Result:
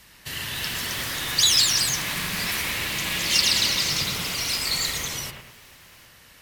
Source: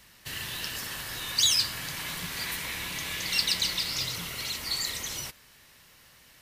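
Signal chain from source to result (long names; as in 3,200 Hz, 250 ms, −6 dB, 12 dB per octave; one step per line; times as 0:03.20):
delay with pitch and tempo change per echo 336 ms, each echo +2 semitones, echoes 2
tape wow and flutter 24 cents
bucket-brigade delay 103 ms, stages 2,048, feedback 43%, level −4 dB
level +4 dB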